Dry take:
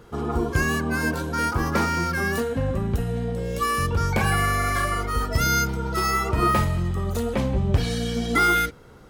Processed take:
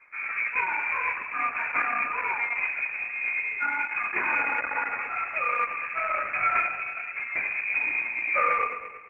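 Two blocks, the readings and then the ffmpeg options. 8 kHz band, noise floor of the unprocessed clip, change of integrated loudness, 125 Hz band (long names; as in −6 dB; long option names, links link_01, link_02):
below −35 dB, −47 dBFS, −3.0 dB, below −35 dB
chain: -filter_complex "[0:a]highpass=frequency=96:width=0.5412,highpass=frequency=96:width=1.3066,flanger=delay=16.5:depth=3.5:speed=2.4,asplit=2[link_01][link_02];[link_02]acrusher=bits=5:dc=4:mix=0:aa=0.000001,volume=-6dB[link_03];[link_01][link_03]amix=inputs=2:normalize=0,asoftclip=type=tanh:threshold=-11dB,asplit=2[link_04][link_05];[link_05]aecho=0:1:111|222|333|444|555|666|777:0.335|0.198|0.117|0.0688|0.0406|0.0239|0.0141[link_06];[link_04][link_06]amix=inputs=2:normalize=0,lowpass=frequency=2200:width_type=q:width=0.5098,lowpass=frequency=2200:width_type=q:width=0.6013,lowpass=frequency=2200:width_type=q:width=0.9,lowpass=frequency=2200:width_type=q:width=2.563,afreqshift=-2600,volume=-4dB" -ar 48000 -c:a libopus -b:a 10k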